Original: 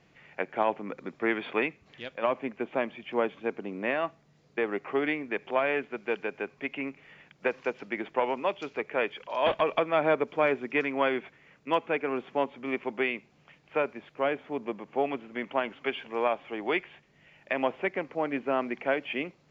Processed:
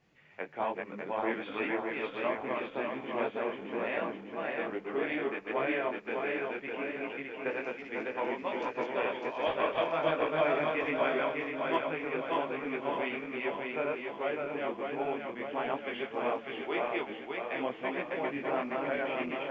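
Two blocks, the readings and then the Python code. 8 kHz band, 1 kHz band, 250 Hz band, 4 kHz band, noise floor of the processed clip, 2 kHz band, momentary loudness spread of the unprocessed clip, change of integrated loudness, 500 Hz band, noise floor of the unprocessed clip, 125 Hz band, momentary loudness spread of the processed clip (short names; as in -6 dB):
n/a, -2.5 dB, -3.0 dB, -2.5 dB, -47 dBFS, -3.0 dB, 9 LU, -3.0 dB, -3.0 dB, -63 dBFS, -2.0 dB, 7 LU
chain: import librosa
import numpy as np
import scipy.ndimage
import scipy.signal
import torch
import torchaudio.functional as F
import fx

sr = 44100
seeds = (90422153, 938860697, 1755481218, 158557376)

y = fx.reverse_delay_fb(x, sr, ms=301, feedback_pct=74, wet_db=-1)
y = fx.detune_double(y, sr, cents=44)
y = y * librosa.db_to_amplitude(-3.5)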